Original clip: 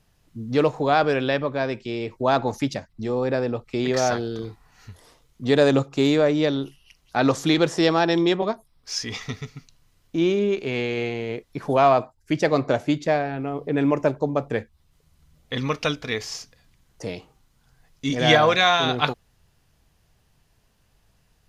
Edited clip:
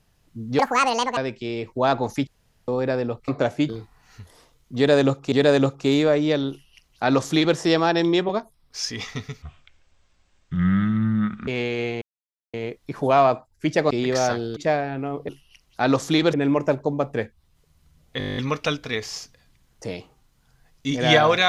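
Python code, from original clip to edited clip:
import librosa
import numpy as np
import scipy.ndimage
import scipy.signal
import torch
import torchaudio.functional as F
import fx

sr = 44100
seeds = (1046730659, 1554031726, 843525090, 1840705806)

y = fx.edit(x, sr, fx.speed_span(start_s=0.59, length_s=1.02, speed=1.76),
    fx.room_tone_fill(start_s=2.71, length_s=0.41),
    fx.swap(start_s=3.72, length_s=0.66, other_s=12.57, other_length_s=0.41),
    fx.repeat(start_s=5.45, length_s=0.56, count=2),
    fx.duplicate(start_s=6.64, length_s=1.05, to_s=13.7),
    fx.speed_span(start_s=9.55, length_s=1.11, speed=0.54),
    fx.insert_silence(at_s=11.2, length_s=0.52),
    fx.stutter(start_s=15.55, slice_s=0.02, count=10), tone=tone)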